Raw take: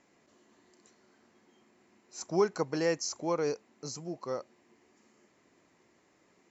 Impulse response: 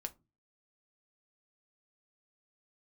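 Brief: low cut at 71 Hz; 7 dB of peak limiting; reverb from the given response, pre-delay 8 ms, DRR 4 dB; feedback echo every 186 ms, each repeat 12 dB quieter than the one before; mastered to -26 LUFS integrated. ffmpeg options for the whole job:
-filter_complex "[0:a]highpass=71,alimiter=limit=0.0841:level=0:latency=1,aecho=1:1:186|372|558:0.251|0.0628|0.0157,asplit=2[s0][s1];[1:a]atrim=start_sample=2205,adelay=8[s2];[s1][s2]afir=irnorm=-1:irlink=0,volume=0.794[s3];[s0][s3]amix=inputs=2:normalize=0,volume=2.37"

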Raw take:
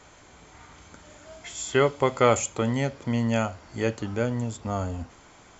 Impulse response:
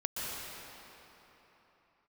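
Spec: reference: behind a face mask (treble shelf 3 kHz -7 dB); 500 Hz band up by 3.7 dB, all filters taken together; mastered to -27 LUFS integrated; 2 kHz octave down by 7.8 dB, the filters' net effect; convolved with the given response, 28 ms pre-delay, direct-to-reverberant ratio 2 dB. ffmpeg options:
-filter_complex "[0:a]equalizer=f=500:t=o:g=5,equalizer=f=2000:t=o:g=-8,asplit=2[s0][s1];[1:a]atrim=start_sample=2205,adelay=28[s2];[s1][s2]afir=irnorm=-1:irlink=0,volume=0.422[s3];[s0][s3]amix=inputs=2:normalize=0,highshelf=f=3000:g=-7,volume=0.596"

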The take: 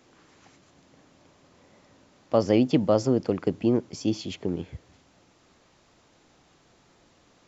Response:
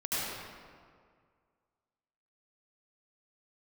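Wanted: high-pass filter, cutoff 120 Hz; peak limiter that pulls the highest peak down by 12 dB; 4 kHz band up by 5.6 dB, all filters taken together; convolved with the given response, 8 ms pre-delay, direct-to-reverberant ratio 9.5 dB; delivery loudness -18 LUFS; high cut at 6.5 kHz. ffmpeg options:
-filter_complex "[0:a]highpass=120,lowpass=6500,equalizer=f=4000:t=o:g=8.5,alimiter=limit=0.106:level=0:latency=1,asplit=2[s0][s1];[1:a]atrim=start_sample=2205,adelay=8[s2];[s1][s2]afir=irnorm=-1:irlink=0,volume=0.133[s3];[s0][s3]amix=inputs=2:normalize=0,volume=4.47"

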